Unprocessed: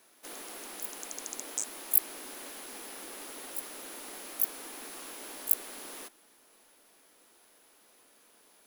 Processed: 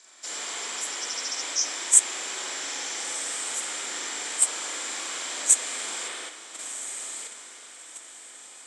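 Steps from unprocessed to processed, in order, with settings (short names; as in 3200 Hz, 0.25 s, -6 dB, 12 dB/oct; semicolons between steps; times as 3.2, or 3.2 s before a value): nonlinear frequency compression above 3700 Hz 1.5:1; steep low-pass 7800 Hz 36 dB/oct; tilt +4.5 dB/oct; notch 2700 Hz, Q 12; on a send: diffused feedback echo 1.41 s, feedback 52%, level -11 dB; on the sum: spring tank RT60 1.7 s, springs 39/59 ms, chirp 70 ms, DRR -7 dB; in parallel at 0 dB: level quantiser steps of 21 dB; on the sum: gain -1.5 dB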